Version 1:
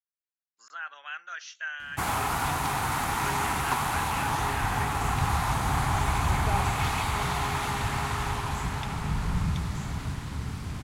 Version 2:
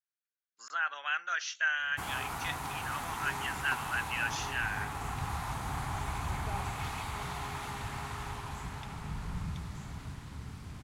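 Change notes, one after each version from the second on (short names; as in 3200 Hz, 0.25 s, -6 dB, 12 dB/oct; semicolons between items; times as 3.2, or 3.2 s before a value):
speech +5.5 dB; background -10.0 dB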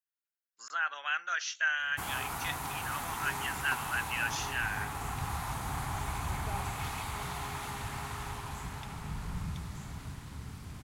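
master: add high shelf 10000 Hz +9 dB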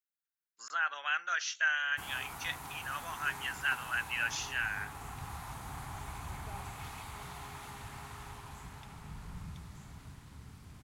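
background -7.5 dB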